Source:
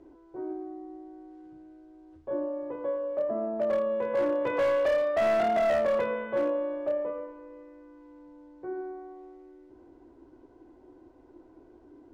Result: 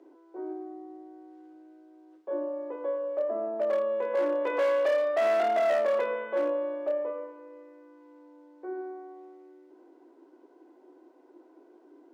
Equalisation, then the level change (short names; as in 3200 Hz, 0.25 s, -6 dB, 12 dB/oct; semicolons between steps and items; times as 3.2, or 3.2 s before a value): HPF 300 Hz 24 dB/oct; 0.0 dB